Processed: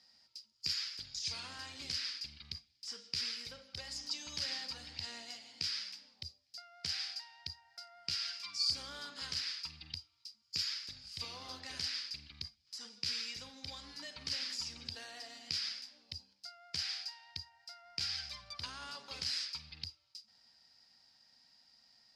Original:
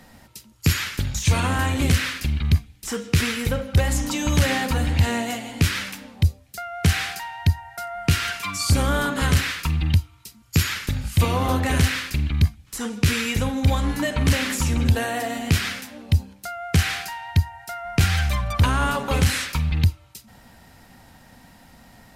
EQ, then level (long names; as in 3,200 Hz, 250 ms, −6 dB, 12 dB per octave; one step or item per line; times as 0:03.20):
resonant band-pass 4,900 Hz, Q 12
spectral tilt −3 dB per octave
+9.5 dB